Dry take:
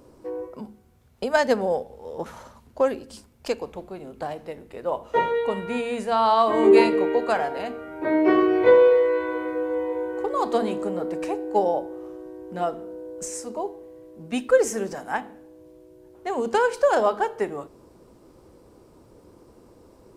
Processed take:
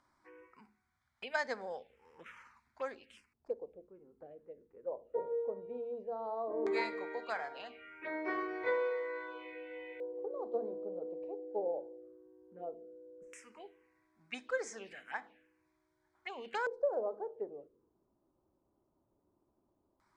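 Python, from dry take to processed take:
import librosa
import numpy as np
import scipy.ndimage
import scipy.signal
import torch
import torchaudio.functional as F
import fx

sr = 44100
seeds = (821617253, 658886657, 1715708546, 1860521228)

y = fx.filter_lfo_lowpass(x, sr, shape='square', hz=0.15, low_hz=500.0, high_hz=2400.0, q=2.8)
y = scipy.signal.lfilter([1.0, -0.97], [1.0], y)
y = fx.env_phaser(y, sr, low_hz=450.0, high_hz=2800.0, full_db=-38.0)
y = F.gain(torch.from_numpy(y), 3.0).numpy()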